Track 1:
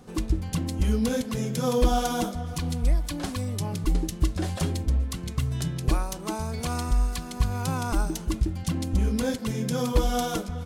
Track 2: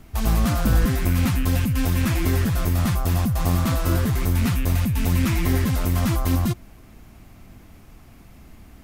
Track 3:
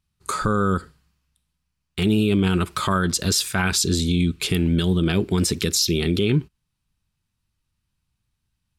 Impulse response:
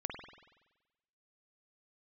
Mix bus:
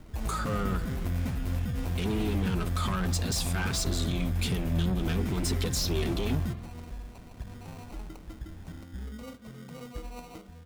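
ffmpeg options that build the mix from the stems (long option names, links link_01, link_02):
-filter_complex "[0:a]volume=-18dB,asplit=2[link_01][link_02];[link_02]volume=-11.5dB[link_03];[1:a]volume=-4.5dB,asplit=2[link_04][link_05];[link_05]volume=-13dB[link_06];[2:a]highpass=frequency=83:width=0.5412,highpass=frequency=83:width=1.3066,flanger=delay=1.6:depth=4.2:regen=65:speed=0.52:shape=triangular,asoftclip=type=tanh:threshold=-25dB,volume=-2dB,asplit=2[link_07][link_08];[link_08]apad=whole_len=389650[link_09];[link_04][link_09]sidechaincompress=threshold=-41dB:ratio=8:attack=16:release=254[link_10];[link_01][link_10]amix=inputs=2:normalize=0,acrusher=samples=26:mix=1:aa=0.000001,acompressor=threshold=-34dB:ratio=10,volume=0dB[link_11];[3:a]atrim=start_sample=2205[link_12];[link_03][link_06]amix=inputs=2:normalize=0[link_13];[link_13][link_12]afir=irnorm=-1:irlink=0[link_14];[link_07][link_11][link_14]amix=inputs=3:normalize=0"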